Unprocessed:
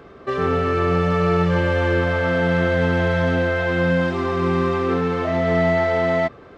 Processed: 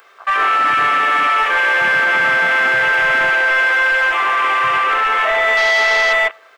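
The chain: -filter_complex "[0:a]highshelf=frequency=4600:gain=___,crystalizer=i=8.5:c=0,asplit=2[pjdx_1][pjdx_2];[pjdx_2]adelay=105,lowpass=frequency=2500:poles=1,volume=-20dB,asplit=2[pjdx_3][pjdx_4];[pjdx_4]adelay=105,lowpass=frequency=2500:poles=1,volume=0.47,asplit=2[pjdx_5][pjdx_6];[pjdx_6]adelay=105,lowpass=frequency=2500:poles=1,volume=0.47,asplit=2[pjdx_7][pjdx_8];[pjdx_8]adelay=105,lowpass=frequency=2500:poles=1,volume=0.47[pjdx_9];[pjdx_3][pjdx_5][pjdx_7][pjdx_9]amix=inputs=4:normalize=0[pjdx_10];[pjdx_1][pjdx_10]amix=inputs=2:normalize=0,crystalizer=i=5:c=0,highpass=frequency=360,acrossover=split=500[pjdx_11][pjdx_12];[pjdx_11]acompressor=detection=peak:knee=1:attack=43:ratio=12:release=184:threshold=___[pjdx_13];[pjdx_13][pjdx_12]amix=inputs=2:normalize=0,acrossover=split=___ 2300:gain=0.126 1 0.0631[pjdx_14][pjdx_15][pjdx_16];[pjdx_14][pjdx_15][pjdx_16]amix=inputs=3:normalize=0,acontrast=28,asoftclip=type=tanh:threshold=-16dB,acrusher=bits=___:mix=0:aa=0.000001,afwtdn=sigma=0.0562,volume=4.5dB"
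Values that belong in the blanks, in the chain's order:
11, -40dB, 500, 10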